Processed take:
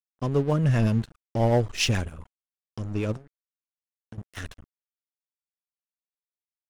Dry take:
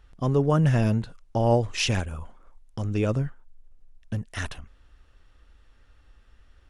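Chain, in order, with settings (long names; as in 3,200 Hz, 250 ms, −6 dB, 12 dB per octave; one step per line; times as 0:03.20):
0:00.69–0:02.08: leveller curve on the samples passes 1
0:03.16–0:04.18: downward compressor 5 to 1, threshold −36 dBFS, peak gain reduction 13 dB
rotating-speaker cabinet horn 7.5 Hz
dead-zone distortion −39.5 dBFS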